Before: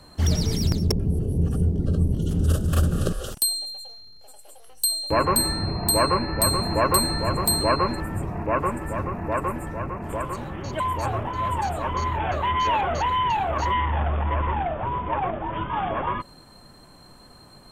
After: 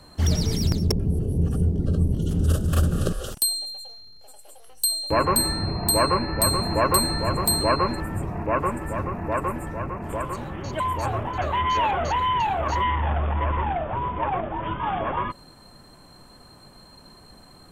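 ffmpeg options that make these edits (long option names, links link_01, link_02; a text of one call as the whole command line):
ffmpeg -i in.wav -filter_complex "[0:a]asplit=2[link_01][link_02];[link_01]atrim=end=11.382[link_03];[link_02]atrim=start=12.278[link_04];[link_03][link_04]acrossfade=duration=0.004:curve1=hsin:curve2=hsin" out.wav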